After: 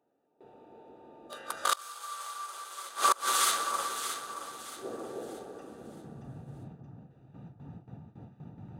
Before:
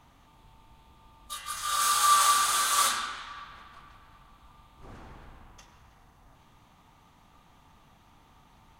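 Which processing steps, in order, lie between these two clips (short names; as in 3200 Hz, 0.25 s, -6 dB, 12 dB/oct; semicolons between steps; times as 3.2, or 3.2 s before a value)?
Wiener smoothing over 41 samples; gate with hold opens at -52 dBFS; in parallel at +1.5 dB: compressor 5:1, threshold -42 dBFS, peak gain reduction 21 dB; on the sum: high-pass sweep 430 Hz -> 130 Hz, 5.45–6.23; on a send: echo with dull and thin repeats by turns 0.313 s, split 1300 Hz, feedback 59%, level -3 dB; on the sum: flipped gate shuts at -17 dBFS, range -26 dB; gain +6 dB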